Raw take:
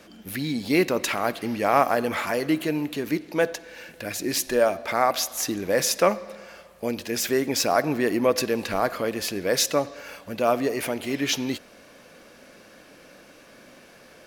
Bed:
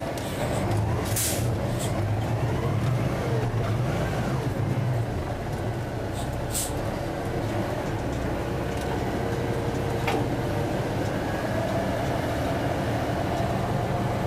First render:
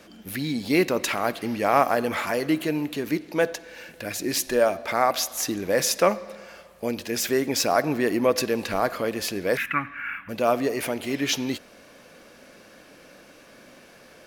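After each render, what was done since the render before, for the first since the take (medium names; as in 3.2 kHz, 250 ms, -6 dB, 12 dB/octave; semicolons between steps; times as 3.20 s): 9.57–10.29 s: FFT filter 260 Hz 0 dB, 510 Hz -26 dB, 1.4 kHz +12 dB, 2.4 kHz +11 dB, 4.5 kHz -27 dB, 6.7 kHz -27 dB, 14 kHz -10 dB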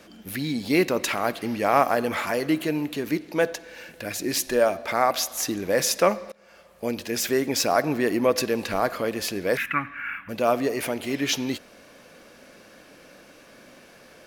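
6.32–6.88 s: fade in, from -22.5 dB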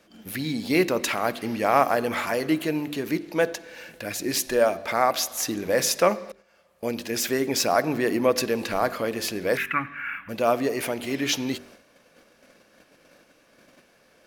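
de-hum 48.72 Hz, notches 9; gate -48 dBFS, range -9 dB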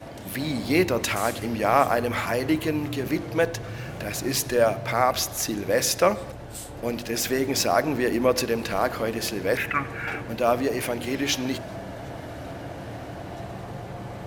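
add bed -10 dB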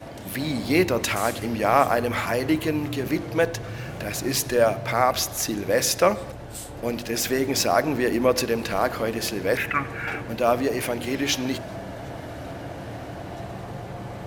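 trim +1 dB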